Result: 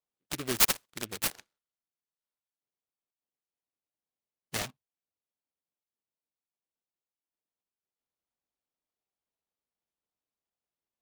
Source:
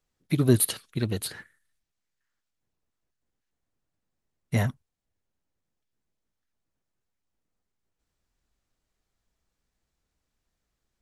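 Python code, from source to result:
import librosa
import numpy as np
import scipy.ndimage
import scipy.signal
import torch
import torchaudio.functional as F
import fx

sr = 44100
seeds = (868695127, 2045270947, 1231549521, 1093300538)

y = fx.wiener(x, sr, points=25)
y = fx.weighting(y, sr, curve='ITU-R 468')
y = fx.noise_mod_delay(y, sr, seeds[0], noise_hz=2100.0, depth_ms=0.13)
y = F.gain(torch.from_numpy(y), -4.0).numpy()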